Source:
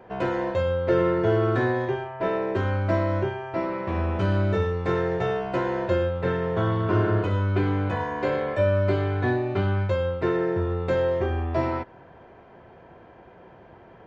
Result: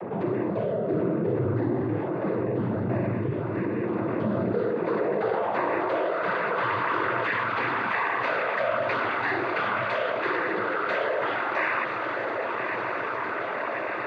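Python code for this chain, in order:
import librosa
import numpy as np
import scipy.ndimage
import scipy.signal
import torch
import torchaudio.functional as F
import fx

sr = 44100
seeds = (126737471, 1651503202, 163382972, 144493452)

y = fx.tracing_dist(x, sr, depth_ms=0.039)
y = fx.small_body(y, sr, hz=(1200.0, 2000.0, 4000.0), ring_ms=45, db=15)
y = fx.peak_eq(y, sr, hz=650.0, db=-7.5, octaves=1.7, at=(3.11, 3.83))
y = fx.echo_diffused(y, sr, ms=1251, feedback_pct=73, wet_db=-12.0)
y = fx.dynamic_eq(y, sr, hz=3300.0, q=1.2, threshold_db=-46.0, ratio=4.0, max_db=5)
y = fx.noise_vocoder(y, sr, seeds[0], bands=16)
y = fx.filter_sweep_bandpass(y, sr, from_hz=200.0, to_hz=1500.0, start_s=3.67, end_s=6.74, q=0.93)
y = fx.env_flatten(y, sr, amount_pct=70)
y = y * librosa.db_to_amplitude(-1.5)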